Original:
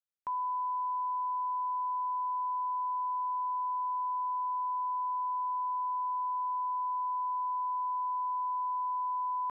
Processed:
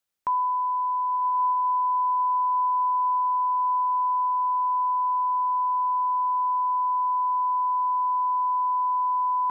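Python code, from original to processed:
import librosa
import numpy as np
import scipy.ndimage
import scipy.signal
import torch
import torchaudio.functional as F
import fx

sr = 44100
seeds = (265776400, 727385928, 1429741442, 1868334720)

y = fx.rider(x, sr, range_db=10, speed_s=0.5)
y = fx.echo_diffused(y, sr, ms=1110, feedback_pct=53, wet_db=-8.5)
y = y * 10.0 ** (7.5 / 20.0)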